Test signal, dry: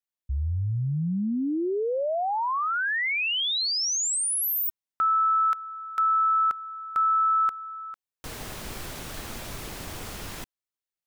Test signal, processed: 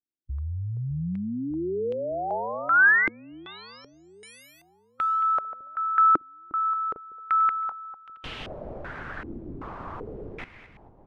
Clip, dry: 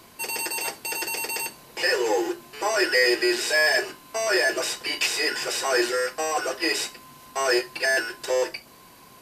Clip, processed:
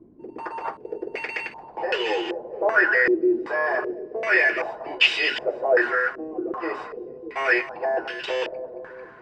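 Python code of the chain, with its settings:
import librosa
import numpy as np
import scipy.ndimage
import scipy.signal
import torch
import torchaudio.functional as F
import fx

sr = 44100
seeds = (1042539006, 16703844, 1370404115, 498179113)

y = fx.echo_split(x, sr, split_hz=510.0, low_ms=605, high_ms=223, feedback_pct=52, wet_db=-13)
y = fx.hpss(y, sr, part='harmonic', gain_db=-4)
y = fx.filter_held_lowpass(y, sr, hz=2.6, low_hz=320.0, high_hz=3000.0)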